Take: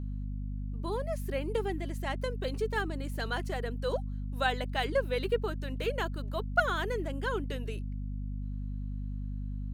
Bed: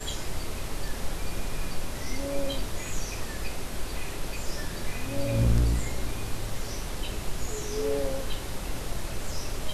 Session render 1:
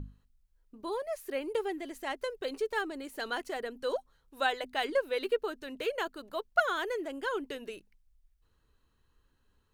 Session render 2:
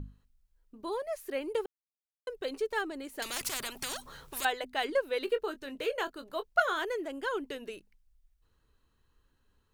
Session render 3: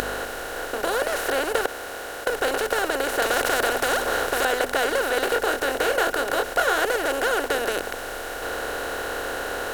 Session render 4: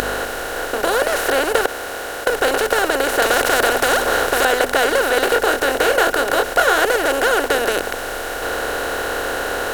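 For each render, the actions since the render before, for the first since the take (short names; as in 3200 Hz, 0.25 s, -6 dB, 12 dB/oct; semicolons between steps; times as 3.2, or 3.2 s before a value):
notches 50/100/150/200/250 Hz
1.66–2.27 mute; 3.22–4.45 spectral compressor 10:1; 5.25–6.85 doubler 22 ms -10.5 dB
per-bin compression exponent 0.2
gain +6.5 dB; limiter -1 dBFS, peak gain reduction 2 dB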